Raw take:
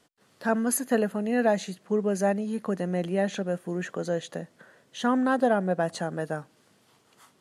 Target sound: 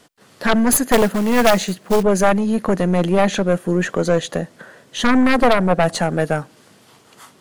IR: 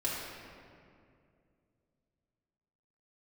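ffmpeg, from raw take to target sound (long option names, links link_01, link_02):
-filter_complex "[0:a]asettb=1/sr,asplit=3[link_01][link_02][link_03];[link_01]atrim=end=0.924[link_04];[link_02]atrim=start=0.92:end=2.03,asetpts=PTS-STARTPTS,afade=type=in:duration=0.004:curve=qsin,afade=type=out:start_time=1.106:duration=0.004:curve=qsin,acrusher=bits=4:mode=log:mix=0:aa=0.000001[link_05];[link_03]atrim=start=2.026[link_06];[link_04][link_05]acrossfade=duration=0.004:curve1=hsin:curve2=qsin[link_07];[link_07][link_06]acrossfade=duration=0.004:curve1=qsin:curve2=hsin,aeval=exprs='0.282*(cos(1*acos(clip(val(0)/0.282,-1,1)))-cos(1*PI/2))+0.141*(cos(4*acos(clip(val(0)/0.282,-1,1)))-cos(4*PI/2))+0.1*(cos(5*acos(clip(val(0)/0.282,-1,1)))-cos(5*PI/2))+0.0398*(cos(6*acos(clip(val(0)/0.282,-1,1)))-cos(6*PI/2))+0.0158*(cos(8*acos(clip(val(0)/0.282,-1,1)))-cos(8*PI/2))':channel_layout=same,volume=4dB"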